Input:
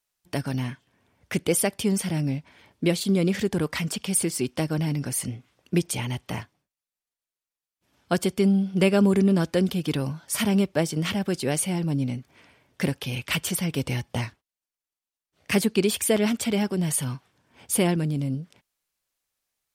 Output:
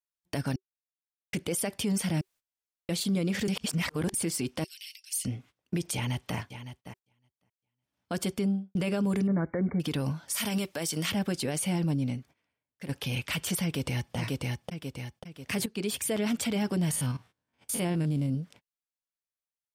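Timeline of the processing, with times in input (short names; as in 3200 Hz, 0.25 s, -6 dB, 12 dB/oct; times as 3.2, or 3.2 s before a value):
0.56–1.33 mute
2.21–2.89 room tone
3.48–4.14 reverse
4.64–5.25 steep high-pass 2600 Hz
5.94–6.37 echo throw 0.56 s, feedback 25%, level -13 dB
8.28–8.75 studio fade out
9.27–9.8 brick-wall FIR low-pass 2300 Hz
10.34–11.12 tilt +2.5 dB/oct
11.77–12.89 fade out, to -18 dB
13.63–14.15 echo throw 0.54 s, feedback 45%, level -4 dB
15.66–16.34 fade in, from -14.5 dB
16.91–18.3 stepped spectrum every 50 ms
whole clip: notch 380 Hz, Q 12; gate -50 dBFS, range -19 dB; limiter -21.5 dBFS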